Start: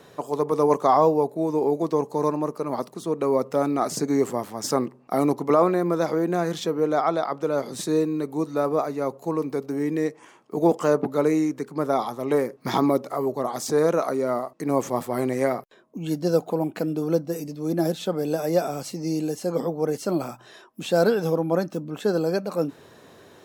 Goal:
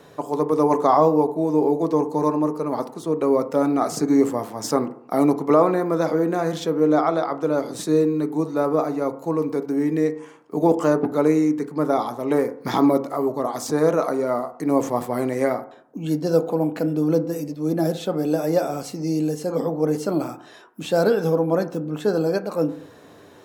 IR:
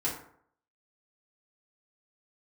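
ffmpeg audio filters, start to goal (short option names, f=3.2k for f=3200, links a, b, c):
-filter_complex "[0:a]asplit=2[a][b];[1:a]atrim=start_sample=2205,lowpass=2.4k[c];[b][c]afir=irnorm=-1:irlink=0,volume=-12.5dB[d];[a][d]amix=inputs=2:normalize=0"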